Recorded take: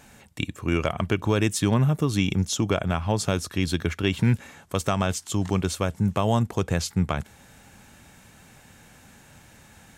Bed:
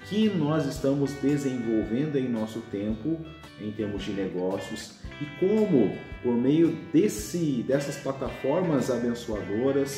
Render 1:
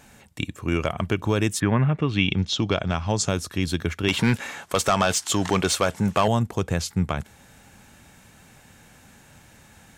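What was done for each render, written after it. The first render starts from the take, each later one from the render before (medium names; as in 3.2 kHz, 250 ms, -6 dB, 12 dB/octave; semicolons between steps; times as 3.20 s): 1.59–3.28 s: resonant low-pass 1.7 kHz -> 7.3 kHz, resonance Q 2.5; 4.08–6.28 s: overdrive pedal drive 18 dB, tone 6.3 kHz, clips at -8.5 dBFS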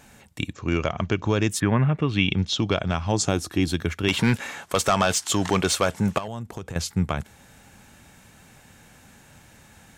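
0.53–1.49 s: careless resampling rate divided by 3×, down none, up filtered; 3.12–3.71 s: small resonant body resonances 320/750 Hz, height 7 dB -> 11 dB; 6.18–6.76 s: compression 4:1, threshold -31 dBFS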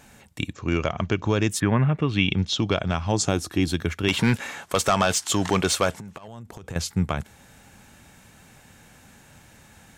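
5.99–6.64 s: compression 12:1, threshold -35 dBFS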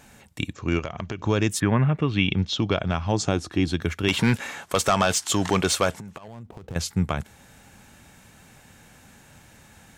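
0.79–1.21 s: compression 3:1, threshold -29 dBFS; 2.09–3.82 s: distance through air 65 m; 6.23–6.75 s: median filter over 25 samples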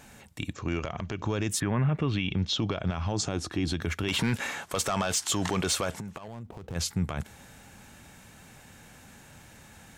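transient shaper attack -3 dB, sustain +1 dB; peak limiter -18.5 dBFS, peak gain reduction 10 dB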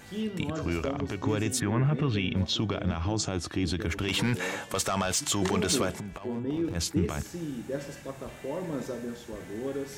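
add bed -9 dB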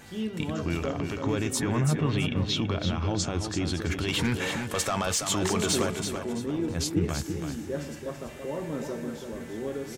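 doubling 13 ms -14 dB; feedback delay 332 ms, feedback 30%, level -7 dB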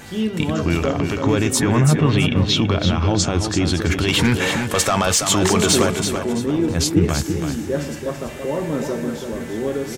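trim +10 dB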